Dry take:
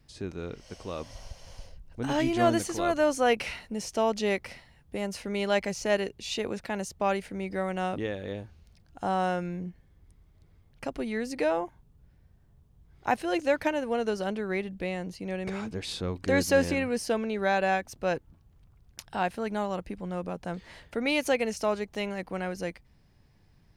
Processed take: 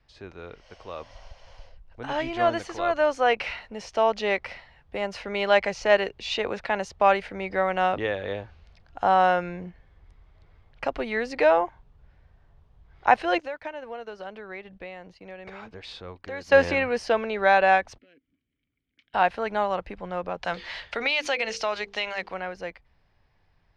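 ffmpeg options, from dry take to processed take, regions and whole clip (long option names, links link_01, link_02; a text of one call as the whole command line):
ffmpeg -i in.wav -filter_complex "[0:a]asettb=1/sr,asplit=3[link_01][link_02][link_03];[link_01]atrim=end=13.384[link_04];[link_02]atrim=start=13.38:end=16.52,asetpts=PTS-STARTPTS,afade=type=in:duration=0.004:curve=qsin,afade=type=out:start_time=3.136:duration=0.004:curve=qsin,acompressor=threshold=-38dB:ratio=4:attack=3.2:release=140:knee=1:detection=peak,agate=range=-33dB:threshold=-39dB:ratio=3:release=100:detection=peak[link_05];[link_03]atrim=start=16.516[link_06];[link_04][link_05]acrossfade=duration=0.004:curve1=hsin:curve2=qsin[link_07];[link_07][link_06]acrossfade=duration=0.004:curve1=qsin:curve2=hsin,asettb=1/sr,asplit=3[link_08][link_09][link_10];[link_08]atrim=end=17.984[link_11];[link_09]atrim=start=17.98:end=19.14,asetpts=PTS-STARTPTS,afade=type=in:duration=0.004:curve=qsin,afade=type=out:start_time=1.156:duration=0.004:curve=qsin,acompressor=threshold=-39dB:ratio=5:attack=3.2:release=140:knee=1:detection=peak,asoftclip=type=hard:threshold=-35.5dB,asplit=3[link_12][link_13][link_14];[link_12]bandpass=frequency=270:width_type=q:width=8,volume=0dB[link_15];[link_13]bandpass=frequency=2290:width_type=q:width=8,volume=-6dB[link_16];[link_14]bandpass=frequency=3010:width_type=q:width=8,volume=-9dB[link_17];[link_15][link_16][link_17]amix=inputs=3:normalize=0[link_18];[link_10]atrim=start=19.136[link_19];[link_11][link_18]acrossfade=duration=0.004:curve1=hsin:curve2=qsin[link_20];[link_20][link_19]acrossfade=duration=0.004:curve1=qsin:curve2=hsin,asettb=1/sr,asplit=3[link_21][link_22][link_23];[link_21]atrim=end=20.424[link_24];[link_22]atrim=start=20.42:end=22.34,asetpts=PTS-STARTPTS,afade=type=in:duration=0.004:curve=qsin,afade=type=out:start_time=1.916:duration=0.004:curve=qsin,equalizer=frequency=4500:width=0.42:gain=13,bandreject=frequency=50:width_type=h:width=6,bandreject=frequency=100:width_type=h:width=6,bandreject=frequency=150:width_type=h:width=6,bandreject=frequency=200:width_type=h:width=6,bandreject=frequency=250:width_type=h:width=6,bandreject=frequency=300:width_type=h:width=6,bandreject=frequency=350:width_type=h:width=6,bandreject=frequency=400:width_type=h:width=6,bandreject=frequency=450:width_type=h:width=6,bandreject=frequency=500:width_type=h:width=6,acompressor=threshold=-25dB:ratio=4:attack=3.2:release=140:knee=1:detection=peak[link_25];[link_23]atrim=start=22.336[link_26];[link_24][link_25]acrossfade=duration=0.004:curve1=hsin:curve2=qsin[link_27];[link_27][link_26]acrossfade=duration=0.004:curve1=qsin:curve2=hsin,aemphasis=mode=reproduction:type=bsi,dynaudnorm=framelen=830:gausssize=9:maxgain=9.5dB,acrossover=split=520 5600:gain=0.1 1 0.178[link_28][link_29][link_30];[link_28][link_29][link_30]amix=inputs=3:normalize=0,volume=2.5dB" out.wav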